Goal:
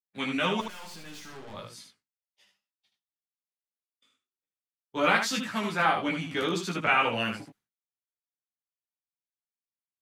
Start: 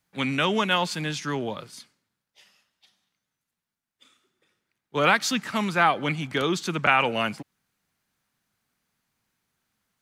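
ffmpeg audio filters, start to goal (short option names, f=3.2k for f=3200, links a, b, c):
-filter_complex "[0:a]agate=range=-33dB:threshold=-50dB:ratio=3:detection=peak,flanger=delay=17:depth=2.5:speed=1.8,asettb=1/sr,asplit=3[a][b][c];[a]atrim=end=0.604[d];[b]atrim=start=0.6:end=1.54,asetpts=PTS-STARTPTS,afade=t=in:d=0.004:c=qsin,afade=t=out:st=0.936:d=0.004:c=qsin,aeval=exprs='(tanh(141*val(0)+0.4)-tanh(0.4))/141':c=same[e];[c]atrim=start=1.536[f];[d][e]acrossfade=d=0.004:c1=hsin:c2=qsin[g];[g][f]acrossfade=d=0.004:c1=qsin:c2=hsin,aecho=1:1:10|77:0.631|0.531,volume=-2.5dB"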